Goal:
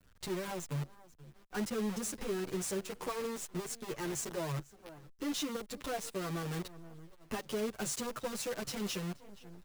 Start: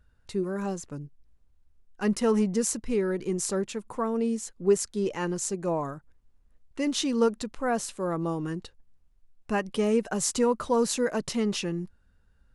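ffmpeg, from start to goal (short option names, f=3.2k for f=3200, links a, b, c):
-filter_complex "[0:a]acrossover=split=240[a][b];[b]acontrast=39[c];[a][c]amix=inputs=2:normalize=0,equalizer=f=140:t=o:w=0.3:g=13.5,asplit=2[d][e];[e]adelay=621,lowpass=f=3.3k:p=1,volume=-22dB,asplit=2[f][g];[g]adelay=621,lowpass=f=3.3k:p=1,volume=0.27[h];[f][h]amix=inputs=2:normalize=0[i];[d][i]amix=inputs=2:normalize=0,atempo=1.3,adynamicequalizer=threshold=0.0112:dfrequency=900:dqfactor=1.7:tfrequency=900:tqfactor=1.7:attack=5:release=100:ratio=0.375:range=3:mode=cutabove:tftype=bell,acompressor=threshold=-34dB:ratio=2.5,asoftclip=type=tanh:threshold=-28dB,acrusher=bits=7:dc=4:mix=0:aa=0.000001,asplit=2[j][k];[k]adelay=8.2,afreqshift=-0.32[l];[j][l]amix=inputs=2:normalize=1"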